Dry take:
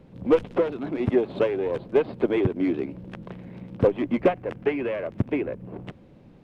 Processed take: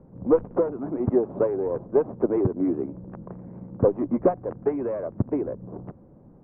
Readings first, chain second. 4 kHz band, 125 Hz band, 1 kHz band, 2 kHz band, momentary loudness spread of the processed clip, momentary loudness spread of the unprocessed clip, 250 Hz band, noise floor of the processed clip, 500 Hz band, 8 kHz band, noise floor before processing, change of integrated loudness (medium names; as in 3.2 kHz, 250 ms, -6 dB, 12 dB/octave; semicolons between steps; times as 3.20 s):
under -30 dB, 0.0 dB, -0.5 dB, under -10 dB, 17 LU, 17 LU, 0.0 dB, -51 dBFS, 0.0 dB, no reading, -51 dBFS, 0.0 dB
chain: low-pass 1.2 kHz 24 dB/octave